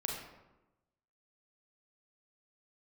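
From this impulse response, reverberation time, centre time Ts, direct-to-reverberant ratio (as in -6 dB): 1.0 s, 52 ms, -1.0 dB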